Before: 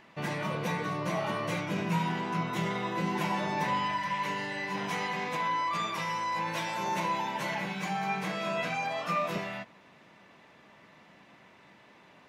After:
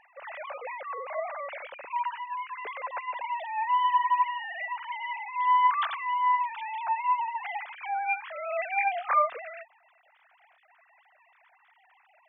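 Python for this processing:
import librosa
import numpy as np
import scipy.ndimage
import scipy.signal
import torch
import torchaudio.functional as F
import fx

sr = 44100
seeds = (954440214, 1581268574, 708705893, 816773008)

y = fx.sine_speech(x, sr)
y = F.gain(torch.from_numpy(y), 2.5).numpy()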